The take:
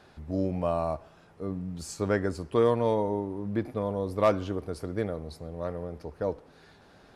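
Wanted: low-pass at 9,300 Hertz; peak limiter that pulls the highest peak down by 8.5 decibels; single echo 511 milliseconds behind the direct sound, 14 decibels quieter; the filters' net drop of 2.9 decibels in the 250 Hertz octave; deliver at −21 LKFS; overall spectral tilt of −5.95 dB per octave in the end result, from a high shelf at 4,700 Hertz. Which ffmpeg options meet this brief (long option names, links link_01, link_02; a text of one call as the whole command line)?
ffmpeg -i in.wav -af "lowpass=9300,equalizer=frequency=250:width_type=o:gain=-4,highshelf=frequency=4700:gain=-7,alimiter=limit=-21.5dB:level=0:latency=1,aecho=1:1:511:0.2,volume=13.5dB" out.wav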